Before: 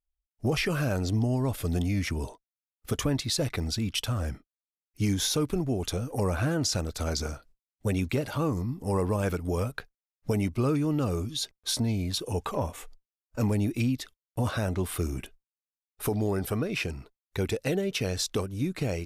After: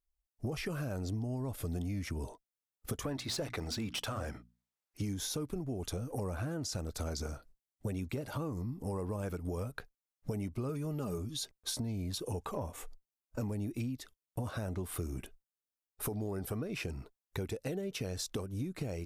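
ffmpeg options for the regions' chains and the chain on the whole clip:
ffmpeg -i in.wav -filter_complex "[0:a]asettb=1/sr,asplit=3[link_01][link_02][link_03];[link_01]atrim=end=3.044[link_04];[link_02]atrim=start=3.04:end=5.02,asetpts=PTS-STARTPTS,afade=type=in:duration=0.004:curve=qsin,afade=type=out:start_time=1.976:duration=0.004:curve=qsin,bandreject=frequency=60:width_type=h:width=6,bandreject=frequency=120:width_type=h:width=6,bandreject=frequency=180:width_type=h:width=6,bandreject=frequency=240:width_type=h:width=6,bandreject=frequency=300:width_type=h:width=6,asplit=2[link_05][link_06];[link_06]highpass=frequency=720:poles=1,volume=14dB,asoftclip=type=tanh:threshold=-17dB[link_07];[link_05][link_07]amix=inputs=2:normalize=0,lowpass=frequency=3800:poles=1,volume=-6dB[link_08];[link_03]atrim=start=5.016[link_09];[link_04][link_08]acrossfade=duration=0.004:curve1=hsin:curve2=qsin[link_10];[link_10][link_09]acrossfade=duration=0.004:curve1=qsin:curve2=hsin,asettb=1/sr,asplit=3[link_11][link_12][link_13];[link_11]atrim=end=10.694[link_14];[link_12]atrim=start=10.69:end=11.18,asetpts=PTS-STARTPTS,afade=type=in:duration=0.004:curve=qsin,afade=type=out:start_time=0.486:duration=0.004:curve=qsin,highshelf=frequency=10000:gain=8.5,aecho=1:1:4.9:0.56,atrim=end_sample=21609[link_15];[link_13]atrim=start=11.176[link_16];[link_14][link_15]acrossfade=duration=0.004:curve1=hsin:curve2=qsin[link_17];[link_17][link_16]acrossfade=duration=0.004:curve1=qsin:curve2=hsin,equalizer=frequency=2900:width_type=o:width=2.1:gain=-5.5,acompressor=threshold=-35dB:ratio=5" out.wav

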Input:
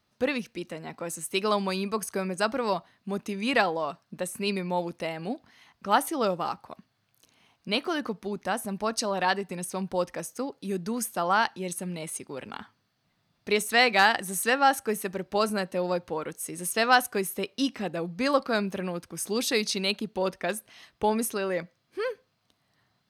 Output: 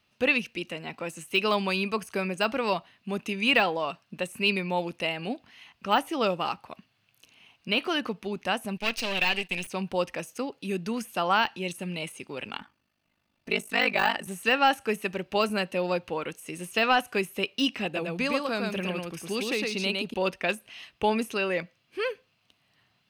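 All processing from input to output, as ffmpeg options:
ffmpeg -i in.wav -filter_complex "[0:a]asettb=1/sr,asplit=3[link_01][link_02][link_03];[link_01]atrim=end=8.774[link_04];[link_02]atrim=start=8.77:end=9.67,asetpts=PTS-STARTPTS,afade=type=in:duration=0.004:curve=qsin,afade=type=out:start_time=0.896:duration=0.004:curve=qsin,aeval=exprs='if(lt(val(0),0),0.251*val(0),val(0))':channel_layout=same,agate=range=-9dB:threshold=-48dB:ratio=16:release=100:detection=peak,highshelf=frequency=1800:width_type=q:width=1.5:gain=9[link_05];[link_03]atrim=start=9.666[link_06];[link_04][link_05]acrossfade=duration=0.004:curve1=hsin:curve2=qsin[link_07];[link_07][link_06]acrossfade=duration=0.004:curve1=qsin:curve2=hsin,asettb=1/sr,asplit=3[link_08][link_09][link_10];[link_08]atrim=end=12.594[link_11];[link_09]atrim=start=12.59:end=14.27,asetpts=PTS-STARTPTS,afade=type=in:duration=0.004:curve=qsin,afade=type=out:start_time=1.676:duration=0.004:curve=qsin,equalizer=frequency=3400:width=0.83:gain=-7,aecho=1:1:3.4:0.44,atrim=end_sample=74088,aeval=exprs='val(0)*sin(2*PI*25*n/s)':channel_layout=same[link_12];[link_10]atrim=start=14.266[link_13];[link_11][link_12]acrossfade=duration=0.004:curve1=hsin:curve2=qsin[link_14];[link_14][link_13]acrossfade=duration=0.004:curve1=qsin:curve2=hsin,asettb=1/sr,asplit=3[link_15][link_16][link_17];[link_15]atrim=end=17.854[link_18];[link_16]atrim=start=17.85:end=20.14,asetpts=PTS-STARTPTS,afade=type=in:duration=0.004:curve=qsin,afade=type=out:start_time=2.286:duration=0.004:curve=qsin,acrossover=split=1300|4700[link_19][link_20][link_21];[link_19]acompressor=threshold=-28dB:ratio=4[link_22];[link_20]acompressor=threshold=-40dB:ratio=4[link_23];[link_21]acompressor=threshold=-42dB:ratio=4[link_24];[link_22][link_23][link_24]amix=inputs=3:normalize=0,aecho=1:1:109:0.708,atrim=end_sample=100989[link_25];[link_17]atrim=start=20.136[link_26];[link_18][link_25]acrossfade=duration=0.004:curve1=hsin:curve2=qsin[link_27];[link_27][link_26]acrossfade=duration=0.004:curve1=qsin:curve2=hsin,deesser=0.8,equalizer=frequency=2700:width_type=o:width=0.54:gain=12.5" out.wav

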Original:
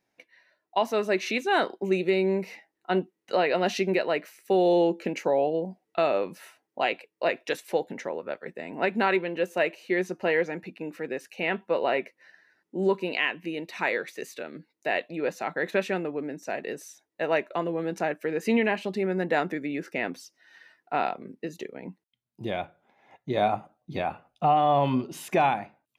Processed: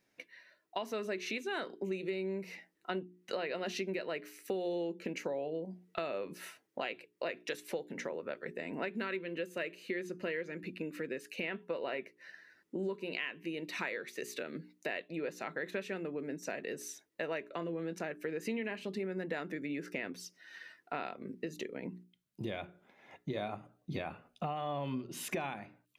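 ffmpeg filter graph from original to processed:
ffmpeg -i in.wav -filter_complex "[0:a]asettb=1/sr,asplit=3[link_01][link_02][link_03];[link_01]atrim=end=8.964[link_04];[link_02]atrim=start=8.96:end=11.44,asetpts=PTS-STARTPTS,afade=type=in:duration=0.004:curve=qsin,afade=type=out:start_time=2.476:duration=0.004:curve=qsin,equalizer=frequency=810:width_type=o:width=0.39:gain=-11,bandreject=frequency=5700:width=13[link_05];[link_03]atrim=start=11.436[link_06];[link_04][link_05]acrossfade=duration=0.004:curve1=hsin:curve2=qsin[link_07];[link_07][link_06]acrossfade=duration=0.004:curve1=qsin:curve2=hsin,asettb=1/sr,asplit=3[link_08][link_09][link_10];[link_08]atrim=end=17.514[link_11];[link_09]atrim=start=17.51:end=17.93,asetpts=PTS-STARTPTS,afade=type=in:duration=0.004:curve=qsin,afade=type=out:start_time=0.416:duration=0.004:curve=qsin,lowpass=9900,asplit=2[link_12][link_13];[link_13]adelay=24,volume=-13dB[link_14];[link_12][link_14]amix=inputs=2:normalize=0,atrim=end_sample=18522[link_15];[link_10]atrim=start=17.926[link_16];[link_11][link_15]acrossfade=duration=0.004:curve1=hsin:curve2=qsin[link_17];[link_17][link_16]acrossfade=duration=0.004:curve1=qsin:curve2=hsin,equalizer=frequency=800:width=2.2:gain=-8,bandreject=frequency=60:width_type=h:width=6,bandreject=frequency=120:width_type=h:width=6,bandreject=frequency=180:width_type=h:width=6,bandreject=frequency=240:width_type=h:width=6,bandreject=frequency=300:width_type=h:width=6,bandreject=frequency=360:width_type=h:width=6,bandreject=frequency=420:width_type=h:width=6,acompressor=threshold=-40dB:ratio=4,volume=3dB" out.wav

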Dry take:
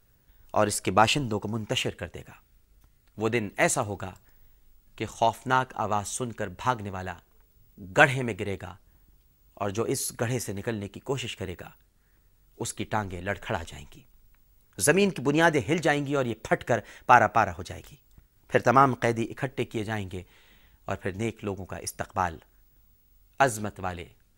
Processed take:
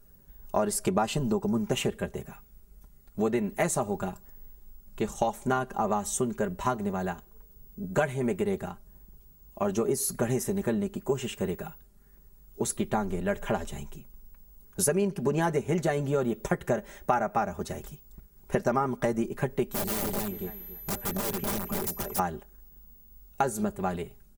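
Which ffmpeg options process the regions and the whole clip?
ffmpeg -i in.wav -filter_complex "[0:a]asettb=1/sr,asplit=3[link_01][link_02][link_03];[link_01]atrim=end=19.714[link_04];[link_02]atrim=start=19.71:end=22.19,asetpts=PTS-STARTPTS,afade=type=in:duration=0.004:curve=qsin,afade=type=out:start_time=2.476:duration=0.004:curve=qsin,aecho=1:1:278|556|834:0.531|0.101|0.0192,atrim=end_sample=109368,aeval=exprs='val(0)+0.00355*sin(2*PI*12000*n/s)':channel_layout=same,aeval=exprs='(mod(26.6*val(0)+1,2)-1)/26.6':channel_layout=same[link_05];[link_03]atrim=start=22.186[link_06];[link_04][link_05]acrossfade=duration=0.004:curve1=hsin:curve2=qsin[link_07];[link_07][link_06]acrossfade=duration=0.004:curve1=qsin:curve2=hsin,equalizer=frequency=2800:width_type=o:width=2.4:gain=-11,aecho=1:1:5:0.73,acompressor=threshold=-28dB:ratio=6,volume=5dB" out.wav

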